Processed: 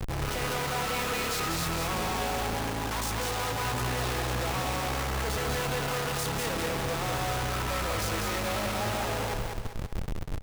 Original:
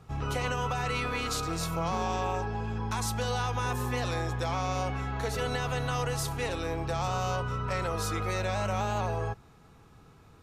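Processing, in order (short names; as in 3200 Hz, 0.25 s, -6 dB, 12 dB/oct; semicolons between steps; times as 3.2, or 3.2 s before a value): Schmitt trigger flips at -48 dBFS; feedback echo 0.196 s, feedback 40%, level -4 dB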